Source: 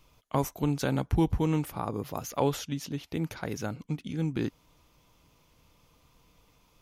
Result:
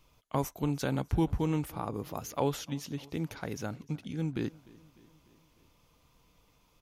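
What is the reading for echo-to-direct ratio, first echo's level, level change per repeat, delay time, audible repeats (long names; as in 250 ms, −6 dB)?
−21.0 dB, −23.0 dB, −4.5 dB, 300 ms, 3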